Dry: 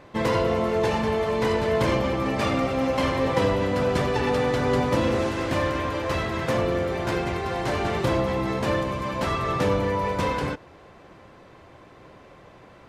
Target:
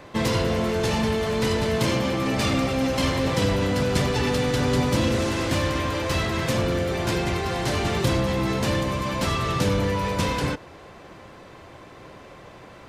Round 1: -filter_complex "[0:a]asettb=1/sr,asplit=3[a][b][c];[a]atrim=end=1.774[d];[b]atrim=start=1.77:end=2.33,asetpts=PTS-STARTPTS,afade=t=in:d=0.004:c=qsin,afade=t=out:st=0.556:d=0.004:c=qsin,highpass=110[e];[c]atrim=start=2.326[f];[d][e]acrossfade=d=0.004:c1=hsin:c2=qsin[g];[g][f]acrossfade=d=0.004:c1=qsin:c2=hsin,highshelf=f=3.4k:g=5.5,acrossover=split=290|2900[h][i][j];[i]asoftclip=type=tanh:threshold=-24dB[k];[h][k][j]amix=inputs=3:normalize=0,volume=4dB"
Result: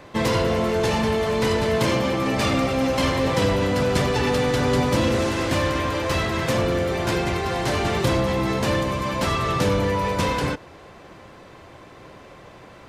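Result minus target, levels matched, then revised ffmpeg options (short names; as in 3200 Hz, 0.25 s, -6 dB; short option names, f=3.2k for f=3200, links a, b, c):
soft clip: distortion -5 dB
-filter_complex "[0:a]asettb=1/sr,asplit=3[a][b][c];[a]atrim=end=1.774[d];[b]atrim=start=1.77:end=2.33,asetpts=PTS-STARTPTS,afade=t=in:d=0.004:c=qsin,afade=t=out:st=0.556:d=0.004:c=qsin,highpass=110[e];[c]atrim=start=2.326[f];[d][e]acrossfade=d=0.004:c1=hsin:c2=qsin[g];[g][f]acrossfade=d=0.004:c1=qsin:c2=hsin,highshelf=f=3.4k:g=5.5,acrossover=split=290|2900[h][i][j];[i]asoftclip=type=tanh:threshold=-30dB[k];[h][k][j]amix=inputs=3:normalize=0,volume=4dB"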